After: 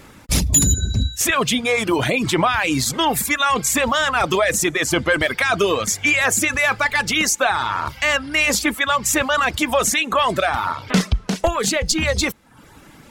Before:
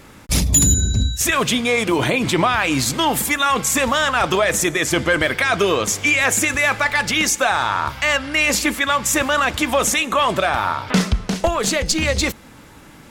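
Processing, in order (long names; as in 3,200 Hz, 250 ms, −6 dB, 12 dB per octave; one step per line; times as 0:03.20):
reverb reduction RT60 0.63 s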